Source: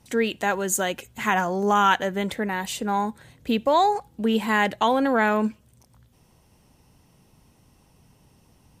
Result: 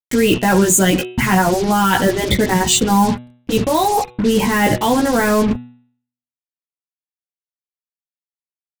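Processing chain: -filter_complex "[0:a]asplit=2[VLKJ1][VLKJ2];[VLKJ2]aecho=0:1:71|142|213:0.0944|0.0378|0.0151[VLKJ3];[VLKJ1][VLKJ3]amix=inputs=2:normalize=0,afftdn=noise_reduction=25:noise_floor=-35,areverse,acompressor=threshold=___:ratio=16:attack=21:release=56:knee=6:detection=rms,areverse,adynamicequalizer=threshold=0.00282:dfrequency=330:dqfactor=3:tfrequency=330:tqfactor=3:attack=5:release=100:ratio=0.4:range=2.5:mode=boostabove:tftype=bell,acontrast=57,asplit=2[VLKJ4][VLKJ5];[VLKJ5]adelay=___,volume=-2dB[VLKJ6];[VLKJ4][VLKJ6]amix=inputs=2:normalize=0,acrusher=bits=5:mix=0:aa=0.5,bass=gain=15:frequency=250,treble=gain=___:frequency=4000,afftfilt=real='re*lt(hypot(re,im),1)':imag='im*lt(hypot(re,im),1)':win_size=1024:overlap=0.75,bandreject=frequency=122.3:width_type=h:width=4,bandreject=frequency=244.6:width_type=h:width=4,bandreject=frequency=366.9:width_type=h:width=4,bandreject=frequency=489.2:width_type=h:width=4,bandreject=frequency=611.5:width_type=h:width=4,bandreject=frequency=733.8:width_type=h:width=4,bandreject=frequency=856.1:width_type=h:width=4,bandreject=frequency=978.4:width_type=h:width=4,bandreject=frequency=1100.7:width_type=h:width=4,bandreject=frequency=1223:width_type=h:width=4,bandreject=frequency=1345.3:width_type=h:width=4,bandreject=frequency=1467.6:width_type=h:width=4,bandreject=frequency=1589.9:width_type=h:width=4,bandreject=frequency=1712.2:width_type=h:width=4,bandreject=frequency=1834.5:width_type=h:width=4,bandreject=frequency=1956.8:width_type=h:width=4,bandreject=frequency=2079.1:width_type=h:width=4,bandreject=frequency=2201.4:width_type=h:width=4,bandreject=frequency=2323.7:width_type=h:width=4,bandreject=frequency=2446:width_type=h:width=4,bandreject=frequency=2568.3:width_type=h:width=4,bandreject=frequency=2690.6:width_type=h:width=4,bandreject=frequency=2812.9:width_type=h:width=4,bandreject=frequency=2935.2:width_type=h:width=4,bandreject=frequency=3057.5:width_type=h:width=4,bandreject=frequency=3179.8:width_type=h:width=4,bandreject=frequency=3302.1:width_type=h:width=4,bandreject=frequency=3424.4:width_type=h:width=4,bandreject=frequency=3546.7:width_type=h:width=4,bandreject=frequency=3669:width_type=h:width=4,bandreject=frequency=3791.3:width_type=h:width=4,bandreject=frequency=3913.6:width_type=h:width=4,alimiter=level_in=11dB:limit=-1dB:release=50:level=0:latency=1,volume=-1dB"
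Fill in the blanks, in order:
-34dB, 16, 7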